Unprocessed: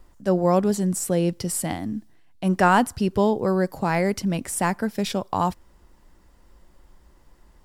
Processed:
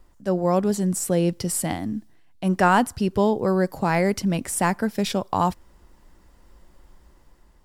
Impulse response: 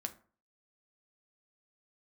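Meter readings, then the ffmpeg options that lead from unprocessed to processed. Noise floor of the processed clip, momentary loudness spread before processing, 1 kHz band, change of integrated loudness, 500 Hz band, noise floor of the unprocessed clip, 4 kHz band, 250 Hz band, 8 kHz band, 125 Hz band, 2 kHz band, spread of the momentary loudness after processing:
−56 dBFS, 8 LU, 0.0 dB, 0.0 dB, 0.0 dB, −56 dBFS, +1.0 dB, +0.5 dB, +1.0 dB, +0.5 dB, +0.5 dB, 7 LU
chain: -af "dynaudnorm=framelen=190:gausssize=7:maxgain=4dB,volume=-2.5dB"

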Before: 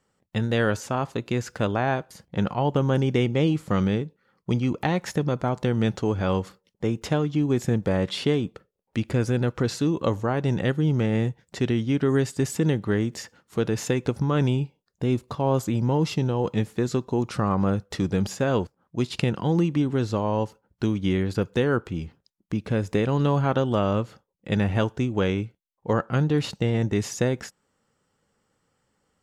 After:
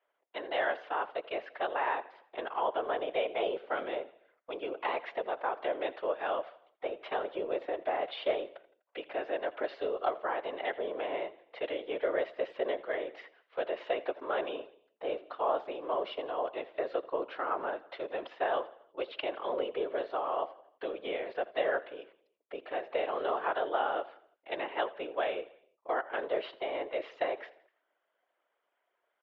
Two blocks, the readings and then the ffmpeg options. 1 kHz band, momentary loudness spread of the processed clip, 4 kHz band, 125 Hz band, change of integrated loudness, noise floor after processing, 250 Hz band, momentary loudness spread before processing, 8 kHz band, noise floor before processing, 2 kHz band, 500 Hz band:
−2.5 dB, 9 LU, −8.5 dB, below −40 dB, −9.5 dB, −81 dBFS, −22.0 dB, 7 LU, below −40 dB, −75 dBFS, −5.0 dB, −6.0 dB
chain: -af "aecho=1:1:83|166|249|332:0.119|0.0582|0.0285|0.014,highpass=frequency=310:width_type=q:width=0.5412,highpass=frequency=310:width_type=q:width=1.307,lowpass=frequency=3200:width_type=q:width=0.5176,lowpass=frequency=3200:width_type=q:width=0.7071,lowpass=frequency=3200:width_type=q:width=1.932,afreqshift=150,afftfilt=real='hypot(re,im)*cos(2*PI*random(0))':imag='hypot(re,im)*sin(2*PI*random(1))':win_size=512:overlap=0.75"

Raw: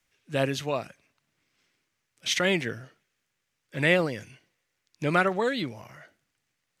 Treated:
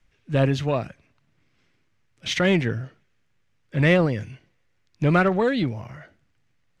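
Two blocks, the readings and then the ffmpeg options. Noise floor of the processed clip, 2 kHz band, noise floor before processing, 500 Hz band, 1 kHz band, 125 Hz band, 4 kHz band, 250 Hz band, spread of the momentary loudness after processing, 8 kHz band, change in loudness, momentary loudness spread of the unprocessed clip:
−67 dBFS, +1.0 dB, −80 dBFS, +4.5 dB, +2.5 dB, +10.5 dB, 0.0 dB, +8.0 dB, 18 LU, −3.5 dB, +4.5 dB, 17 LU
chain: -filter_complex "[0:a]aemphasis=mode=reproduction:type=bsi,asplit=2[link_01][link_02];[link_02]asoftclip=type=tanh:threshold=-22dB,volume=-4dB[link_03];[link_01][link_03]amix=inputs=2:normalize=0"

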